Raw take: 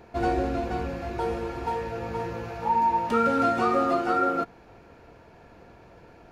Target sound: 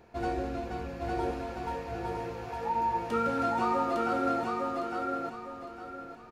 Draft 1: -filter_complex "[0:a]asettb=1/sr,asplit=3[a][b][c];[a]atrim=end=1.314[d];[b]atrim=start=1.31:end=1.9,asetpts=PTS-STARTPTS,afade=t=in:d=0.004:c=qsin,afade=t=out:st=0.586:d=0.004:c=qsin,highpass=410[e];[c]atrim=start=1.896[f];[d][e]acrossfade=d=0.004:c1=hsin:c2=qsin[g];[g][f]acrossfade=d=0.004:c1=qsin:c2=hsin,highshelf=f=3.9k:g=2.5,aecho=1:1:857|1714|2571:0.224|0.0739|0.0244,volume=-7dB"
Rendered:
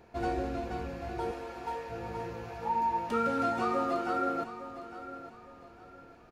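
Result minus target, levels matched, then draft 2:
echo-to-direct -10.5 dB
-filter_complex "[0:a]asettb=1/sr,asplit=3[a][b][c];[a]atrim=end=1.314[d];[b]atrim=start=1.31:end=1.9,asetpts=PTS-STARTPTS,afade=t=in:d=0.004:c=qsin,afade=t=out:st=0.586:d=0.004:c=qsin,highpass=410[e];[c]atrim=start=1.896[f];[d][e]acrossfade=d=0.004:c1=hsin:c2=qsin[g];[g][f]acrossfade=d=0.004:c1=qsin:c2=hsin,highshelf=f=3.9k:g=2.5,aecho=1:1:857|1714|2571|3428:0.75|0.247|0.0817|0.0269,volume=-7dB"

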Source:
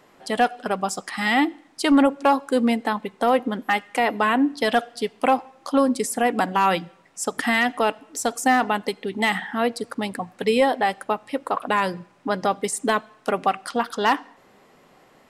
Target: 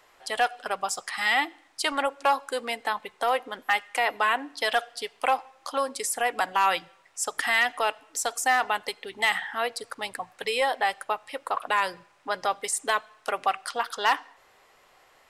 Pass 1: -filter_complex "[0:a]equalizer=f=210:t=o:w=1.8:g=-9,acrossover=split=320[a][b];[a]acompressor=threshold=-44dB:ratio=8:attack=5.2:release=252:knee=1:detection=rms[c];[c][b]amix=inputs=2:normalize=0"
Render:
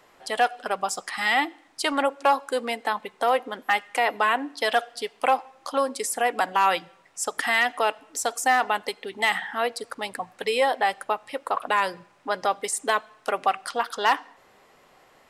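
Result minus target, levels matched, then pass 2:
250 Hz band +4.5 dB
-filter_complex "[0:a]equalizer=f=210:t=o:w=1.8:g=-21,acrossover=split=320[a][b];[a]acompressor=threshold=-44dB:ratio=8:attack=5.2:release=252:knee=1:detection=rms[c];[c][b]amix=inputs=2:normalize=0"

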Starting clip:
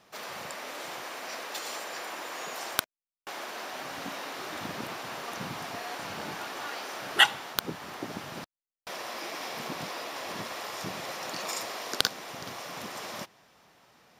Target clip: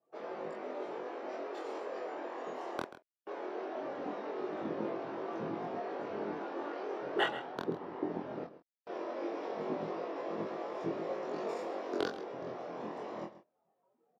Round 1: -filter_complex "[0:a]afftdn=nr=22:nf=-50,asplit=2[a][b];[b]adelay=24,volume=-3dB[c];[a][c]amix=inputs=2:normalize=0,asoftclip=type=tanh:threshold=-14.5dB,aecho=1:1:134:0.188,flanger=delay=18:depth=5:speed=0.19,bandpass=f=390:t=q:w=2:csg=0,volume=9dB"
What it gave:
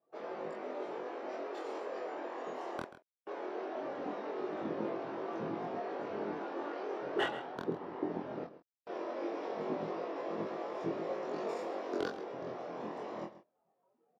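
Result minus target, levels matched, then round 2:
soft clip: distortion +14 dB
-filter_complex "[0:a]afftdn=nr=22:nf=-50,asplit=2[a][b];[b]adelay=24,volume=-3dB[c];[a][c]amix=inputs=2:normalize=0,asoftclip=type=tanh:threshold=-3.5dB,aecho=1:1:134:0.188,flanger=delay=18:depth=5:speed=0.19,bandpass=f=390:t=q:w=2:csg=0,volume=9dB"

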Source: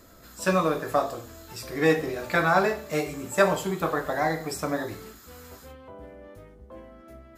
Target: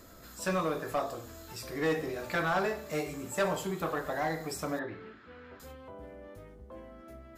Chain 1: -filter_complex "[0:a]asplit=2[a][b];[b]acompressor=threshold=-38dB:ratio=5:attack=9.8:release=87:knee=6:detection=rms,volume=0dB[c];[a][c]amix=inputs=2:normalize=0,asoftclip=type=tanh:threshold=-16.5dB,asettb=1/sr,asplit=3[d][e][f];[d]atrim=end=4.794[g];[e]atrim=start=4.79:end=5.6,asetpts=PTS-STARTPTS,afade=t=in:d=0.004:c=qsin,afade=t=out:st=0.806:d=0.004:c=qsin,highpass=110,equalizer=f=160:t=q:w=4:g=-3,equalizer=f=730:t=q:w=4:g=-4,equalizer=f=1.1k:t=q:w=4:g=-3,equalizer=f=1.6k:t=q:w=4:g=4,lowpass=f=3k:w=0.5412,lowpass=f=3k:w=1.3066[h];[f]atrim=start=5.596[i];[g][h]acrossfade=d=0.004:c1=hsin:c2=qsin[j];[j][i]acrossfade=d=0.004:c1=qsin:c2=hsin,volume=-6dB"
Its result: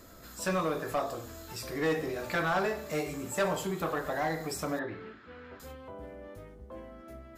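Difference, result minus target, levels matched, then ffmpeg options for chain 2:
compressor: peak gain reduction -8.5 dB
-filter_complex "[0:a]asplit=2[a][b];[b]acompressor=threshold=-48.5dB:ratio=5:attack=9.8:release=87:knee=6:detection=rms,volume=0dB[c];[a][c]amix=inputs=2:normalize=0,asoftclip=type=tanh:threshold=-16.5dB,asettb=1/sr,asplit=3[d][e][f];[d]atrim=end=4.794[g];[e]atrim=start=4.79:end=5.6,asetpts=PTS-STARTPTS,afade=t=in:d=0.004:c=qsin,afade=t=out:st=0.806:d=0.004:c=qsin,highpass=110,equalizer=f=160:t=q:w=4:g=-3,equalizer=f=730:t=q:w=4:g=-4,equalizer=f=1.1k:t=q:w=4:g=-3,equalizer=f=1.6k:t=q:w=4:g=4,lowpass=f=3k:w=0.5412,lowpass=f=3k:w=1.3066[h];[f]atrim=start=5.596[i];[g][h]acrossfade=d=0.004:c1=hsin:c2=qsin[j];[j][i]acrossfade=d=0.004:c1=qsin:c2=hsin,volume=-6dB"

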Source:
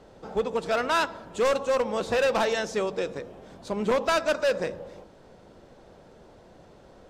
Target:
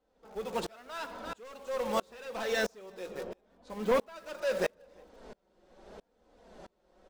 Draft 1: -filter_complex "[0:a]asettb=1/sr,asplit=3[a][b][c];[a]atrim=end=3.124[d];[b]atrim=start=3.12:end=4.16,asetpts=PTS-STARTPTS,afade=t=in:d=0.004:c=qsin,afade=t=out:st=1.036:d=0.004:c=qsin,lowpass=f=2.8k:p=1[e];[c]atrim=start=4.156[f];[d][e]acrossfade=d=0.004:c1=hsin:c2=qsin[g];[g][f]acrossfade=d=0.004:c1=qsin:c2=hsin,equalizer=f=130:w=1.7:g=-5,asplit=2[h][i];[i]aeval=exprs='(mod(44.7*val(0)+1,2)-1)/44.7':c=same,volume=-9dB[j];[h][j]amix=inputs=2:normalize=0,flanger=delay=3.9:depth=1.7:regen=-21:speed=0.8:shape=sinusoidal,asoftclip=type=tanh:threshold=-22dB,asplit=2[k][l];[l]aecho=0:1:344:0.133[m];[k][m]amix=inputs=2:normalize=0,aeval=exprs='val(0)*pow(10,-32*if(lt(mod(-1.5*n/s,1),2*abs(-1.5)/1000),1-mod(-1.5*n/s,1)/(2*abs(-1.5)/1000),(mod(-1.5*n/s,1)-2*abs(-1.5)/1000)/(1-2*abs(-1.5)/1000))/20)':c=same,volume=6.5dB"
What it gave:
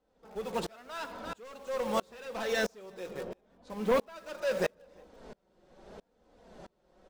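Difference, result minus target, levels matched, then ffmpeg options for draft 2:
125 Hz band +2.5 dB
-filter_complex "[0:a]asettb=1/sr,asplit=3[a][b][c];[a]atrim=end=3.124[d];[b]atrim=start=3.12:end=4.16,asetpts=PTS-STARTPTS,afade=t=in:d=0.004:c=qsin,afade=t=out:st=1.036:d=0.004:c=qsin,lowpass=f=2.8k:p=1[e];[c]atrim=start=4.156[f];[d][e]acrossfade=d=0.004:c1=hsin:c2=qsin[g];[g][f]acrossfade=d=0.004:c1=qsin:c2=hsin,equalizer=f=130:w=1.7:g=-12,asplit=2[h][i];[i]aeval=exprs='(mod(44.7*val(0)+1,2)-1)/44.7':c=same,volume=-9dB[j];[h][j]amix=inputs=2:normalize=0,flanger=delay=3.9:depth=1.7:regen=-21:speed=0.8:shape=sinusoidal,asoftclip=type=tanh:threshold=-22dB,asplit=2[k][l];[l]aecho=0:1:344:0.133[m];[k][m]amix=inputs=2:normalize=0,aeval=exprs='val(0)*pow(10,-32*if(lt(mod(-1.5*n/s,1),2*abs(-1.5)/1000),1-mod(-1.5*n/s,1)/(2*abs(-1.5)/1000),(mod(-1.5*n/s,1)-2*abs(-1.5)/1000)/(1-2*abs(-1.5)/1000))/20)':c=same,volume=6.5dB"

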